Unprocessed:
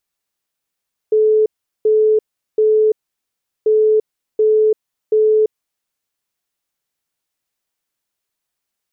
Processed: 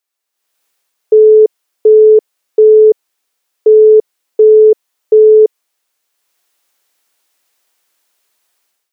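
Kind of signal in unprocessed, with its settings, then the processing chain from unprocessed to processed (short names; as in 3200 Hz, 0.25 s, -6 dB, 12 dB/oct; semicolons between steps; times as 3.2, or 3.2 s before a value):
beep pattern sine 432 Hz, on 0.34 s, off 0.39 s, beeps 3, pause 0.74 s, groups 2, -9.5 dBFS
HPF 370 Hz 12 dB/oct; AGC gain up to 16 dB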